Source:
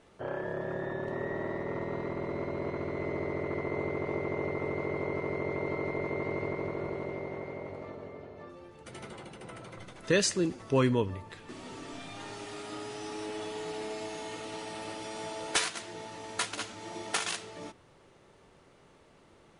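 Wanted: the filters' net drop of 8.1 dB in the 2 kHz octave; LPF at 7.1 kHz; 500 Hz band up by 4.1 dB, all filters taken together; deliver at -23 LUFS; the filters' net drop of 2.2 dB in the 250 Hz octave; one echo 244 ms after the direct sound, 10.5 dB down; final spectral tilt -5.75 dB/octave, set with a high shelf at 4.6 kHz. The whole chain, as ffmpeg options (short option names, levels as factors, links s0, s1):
-af "lowpass=7100,equalizer=f=250:t=o:g=-7.5,equalizer=f=500:t=o:g=8,equalizer=f=2000:t=o:g=-8.5,highshelf=f=4600:g=-8,aecho=1:1:244:0.299,volume=3.16"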